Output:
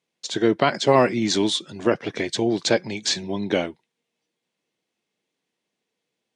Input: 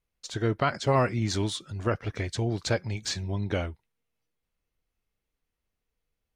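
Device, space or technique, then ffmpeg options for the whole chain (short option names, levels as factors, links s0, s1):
television speaker: -af "highpass=f=170:w=0.5412,highpass=f=170:w=1.3066,equalizer=f=350:t=q:w=4:g=3,equalizer=f=1300:t=q:w=4:g=-7,equalizer=f=3500:t=q:w=4:g=4,lowpass=f=9000:w=0.5412,lowpass=f=9000:w=1.3066,volume=2.51"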